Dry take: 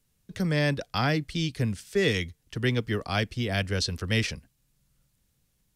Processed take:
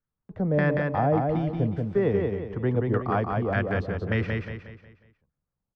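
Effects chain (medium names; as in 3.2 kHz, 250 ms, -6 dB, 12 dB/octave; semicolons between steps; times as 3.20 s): LFO low-pass saw down 1.7 Hz 550–1500 Hz; gate -59 dBFS, range -15 dB; feedback delay 181 ms, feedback 40%, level -3.5 dB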